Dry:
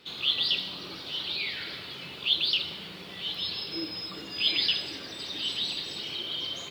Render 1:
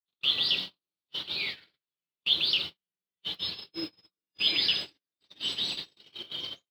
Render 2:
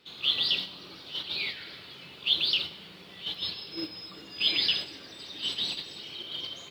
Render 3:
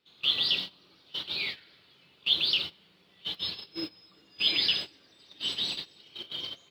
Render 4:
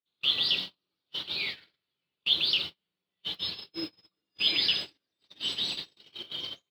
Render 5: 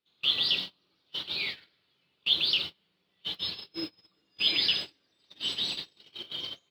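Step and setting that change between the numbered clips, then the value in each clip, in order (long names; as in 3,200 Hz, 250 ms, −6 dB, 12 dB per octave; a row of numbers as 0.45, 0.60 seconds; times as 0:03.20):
noise gate, range: −59, −6, −20, −45, −32 decibels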